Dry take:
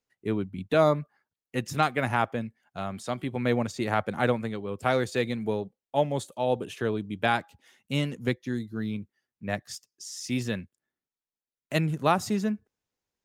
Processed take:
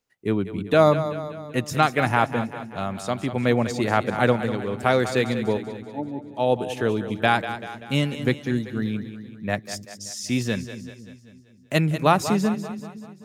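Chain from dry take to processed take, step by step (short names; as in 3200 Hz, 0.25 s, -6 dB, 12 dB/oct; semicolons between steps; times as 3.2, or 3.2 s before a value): 5.57–6.35 vocal tract filter u; split-band echo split 330 Hz, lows 0.255 s, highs 0.193 s, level -11 dB; gain +5 dB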